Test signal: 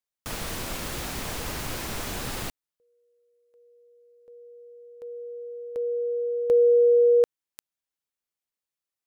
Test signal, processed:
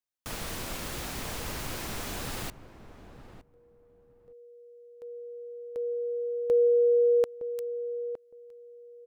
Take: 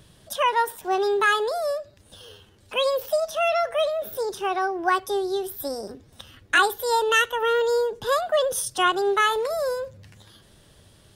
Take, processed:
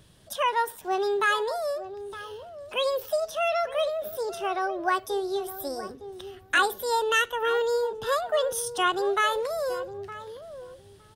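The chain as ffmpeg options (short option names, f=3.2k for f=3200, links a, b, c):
-filter_complex "[0:a]asplit=2[a][b];[b]adelay=913,lowpass=f=860:p=1,volume=-11dB,asplit=2[c][d];[d]adelay=913,lowpass=f=860:p=1,volume=0.18[e];[a][c][e]amix=inputs=3:normalize=0,volume=-3.5dB"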